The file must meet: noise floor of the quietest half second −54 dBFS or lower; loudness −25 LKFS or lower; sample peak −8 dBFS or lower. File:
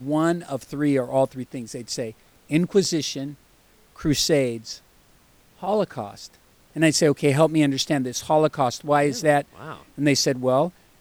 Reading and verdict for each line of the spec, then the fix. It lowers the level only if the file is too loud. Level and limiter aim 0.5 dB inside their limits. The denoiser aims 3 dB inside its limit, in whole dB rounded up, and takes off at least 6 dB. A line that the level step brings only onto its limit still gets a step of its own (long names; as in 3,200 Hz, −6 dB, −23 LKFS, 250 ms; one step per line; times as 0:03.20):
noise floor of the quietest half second −57 dBFS: in spec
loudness −22.5 LKFS: out of spec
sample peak −5.5 dBFS: out of spec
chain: level −3 dB